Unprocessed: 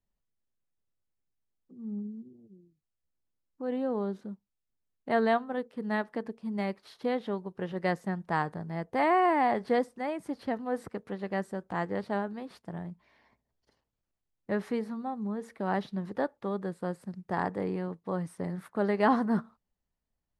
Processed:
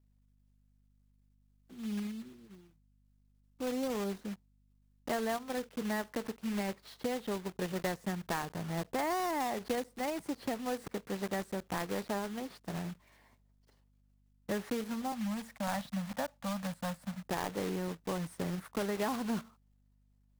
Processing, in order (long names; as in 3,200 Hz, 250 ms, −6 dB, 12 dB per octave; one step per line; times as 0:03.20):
one scale factor per block 3 bits
0:15.12–0:17.26: Chebyshev band-stop filter 240–600 Hz, order 2
downward compressor 6 to 1, threshold −31 dBFS, peak gain reduction 11.5 dB
mains hum 50 Hz, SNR 31 dB